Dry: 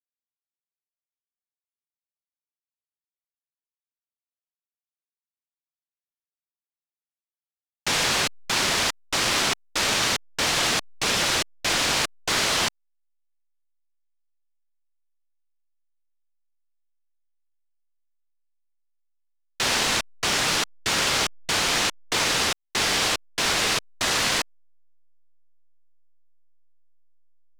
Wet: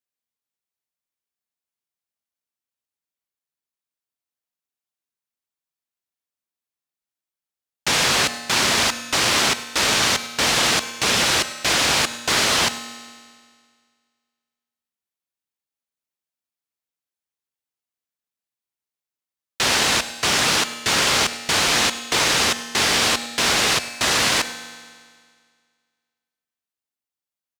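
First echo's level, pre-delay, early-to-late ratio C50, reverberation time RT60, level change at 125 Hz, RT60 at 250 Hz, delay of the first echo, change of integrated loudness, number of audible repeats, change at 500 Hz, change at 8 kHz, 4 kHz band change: -18.0 dB, 33 ms, 11.0 dB, 1.9 s, +4.0 dB, 1.9 s, 0.102 s, +4.5 dB, 1, +4.0 dB, +4.5 dB, +4.5 dB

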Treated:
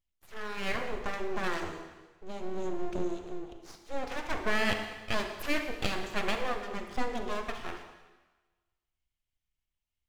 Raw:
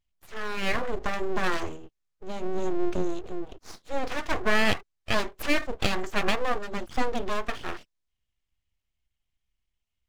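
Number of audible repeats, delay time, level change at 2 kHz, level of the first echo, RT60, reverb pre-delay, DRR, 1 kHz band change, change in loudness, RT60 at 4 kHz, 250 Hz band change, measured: none, none, -5.0 dB, none, 1.2 s, 35 ms, 5.5 dB, -5.0 dB, -5.0 dB, 1.2 s, -5.5 dB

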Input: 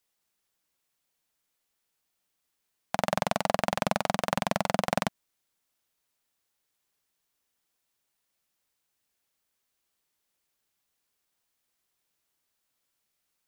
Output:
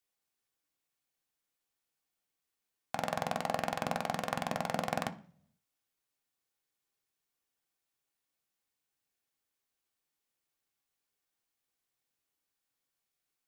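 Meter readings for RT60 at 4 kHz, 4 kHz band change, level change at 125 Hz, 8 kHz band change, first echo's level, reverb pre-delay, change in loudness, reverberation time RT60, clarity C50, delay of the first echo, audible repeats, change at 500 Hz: 0.60 s, -7.0 dB, -6.5 dB, -7.5 dB, none, 3 ms, -6.5 dB, 0.50 s, 16.5 dB, none, none, -7.0 dB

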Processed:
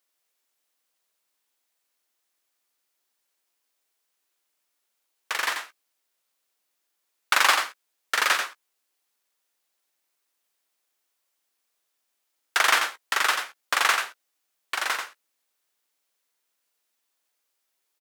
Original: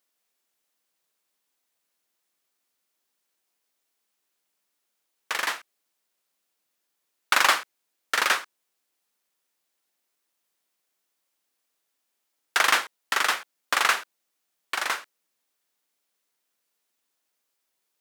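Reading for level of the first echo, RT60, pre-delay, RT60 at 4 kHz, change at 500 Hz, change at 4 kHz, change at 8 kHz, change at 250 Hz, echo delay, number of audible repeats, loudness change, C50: -6.0 dB, none, none, none, -0.5 dB, +1.0 dB, +1.0 dB, -2.5 dB, 89 ms, 1, +0.5 dB, none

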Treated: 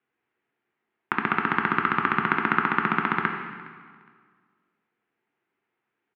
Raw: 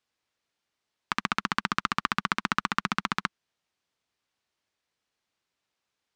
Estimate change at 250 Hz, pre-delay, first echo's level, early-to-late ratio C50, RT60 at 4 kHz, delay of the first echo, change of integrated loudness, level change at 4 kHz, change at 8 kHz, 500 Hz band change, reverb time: +7.0 dB, 4 ms, -21.0 dB, 5.5 dB, 1.7 s, 0.413 s, +5.0 dB, -6.5 dB, under -30 dB, +10.5 dB, 1.8 s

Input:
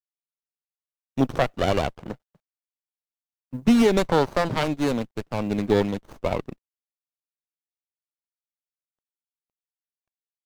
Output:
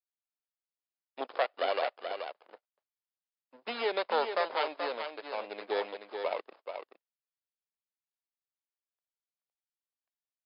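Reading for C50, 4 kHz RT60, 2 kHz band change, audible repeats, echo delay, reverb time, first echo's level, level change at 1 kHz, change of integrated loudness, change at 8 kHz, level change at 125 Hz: none, none, -5.5 dB, 1, 0.43 s, none, -7.0 dB, -5.5 dB, -10.5 dB, under -35 dB, under -40 dB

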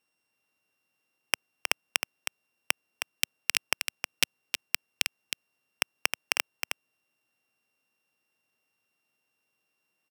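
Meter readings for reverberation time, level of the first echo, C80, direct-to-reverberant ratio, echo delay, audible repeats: none, -6.5 dB, none, none, 0.315 s, 1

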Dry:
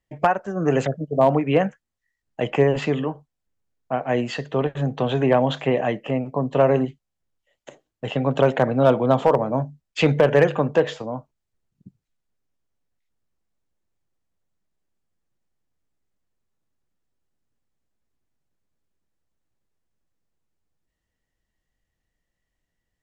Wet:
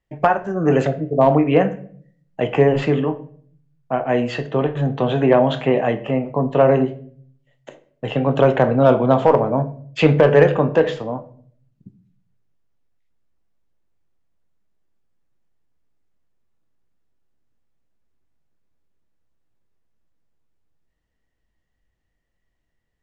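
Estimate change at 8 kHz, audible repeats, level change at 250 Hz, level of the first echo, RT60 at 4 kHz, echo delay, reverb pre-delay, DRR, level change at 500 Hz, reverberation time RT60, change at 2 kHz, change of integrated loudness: n/a, none, +4.0 dB, none, 0.40 s, none, 13 ms, 8.0 dB, +3.5 dB, 0.55 s, +2.5 dB, +3.5 dB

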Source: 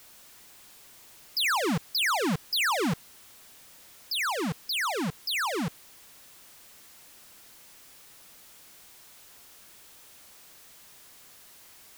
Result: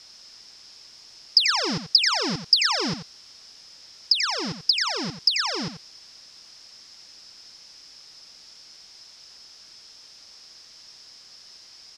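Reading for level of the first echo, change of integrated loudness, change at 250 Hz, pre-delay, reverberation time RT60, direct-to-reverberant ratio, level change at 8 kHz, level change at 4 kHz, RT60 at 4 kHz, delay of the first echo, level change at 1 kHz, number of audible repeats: -10.0 dB, +6.5 dB, -1.0 dB, none, none, none, +2.5 dB, +10.0 dB, none, 88 ms, -1.0 dB, 1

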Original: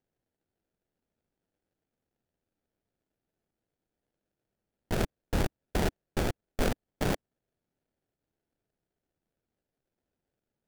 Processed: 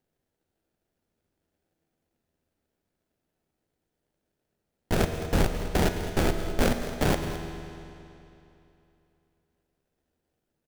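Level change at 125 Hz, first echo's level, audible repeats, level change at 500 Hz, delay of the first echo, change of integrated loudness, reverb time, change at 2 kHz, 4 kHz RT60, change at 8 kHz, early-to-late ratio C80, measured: +5.5 dB, -13.0 dB, 1, +5.5 dB, 0.213 s, +5.0 dB, 2.9 s, +5.5 dB, 2.6 s, +5.5 dB, 6.5 dB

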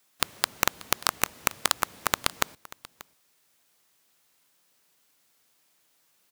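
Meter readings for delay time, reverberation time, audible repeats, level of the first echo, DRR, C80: 0.586 s, none, 1, -20.0 dB, none, none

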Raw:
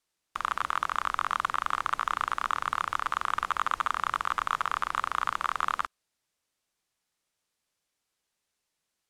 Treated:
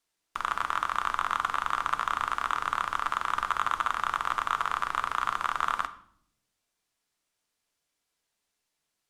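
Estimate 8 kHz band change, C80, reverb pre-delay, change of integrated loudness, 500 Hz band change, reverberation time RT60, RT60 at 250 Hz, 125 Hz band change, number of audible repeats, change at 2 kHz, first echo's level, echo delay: +0.5 dB, 17.5 dB, 3 ms, +0.5 dB, +1.0 dB, 0.65 s, 1.1 s, 0.0 dB, none, +0.5 dB, none, none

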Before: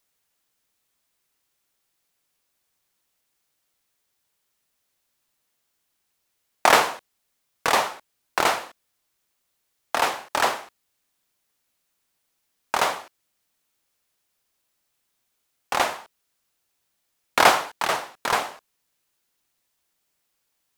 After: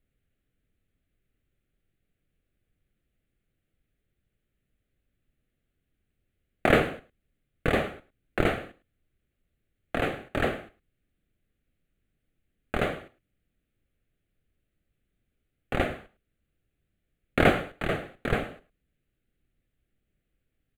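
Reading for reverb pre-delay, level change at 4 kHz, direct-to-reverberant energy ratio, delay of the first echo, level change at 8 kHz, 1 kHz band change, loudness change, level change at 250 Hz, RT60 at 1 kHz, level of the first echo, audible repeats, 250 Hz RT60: none, -11.0 dB, none, 0.106 s, -20.5 dB, -11.0 dB, -5.5 dB, +7.5 dB, none, -19.0 dB, 1, none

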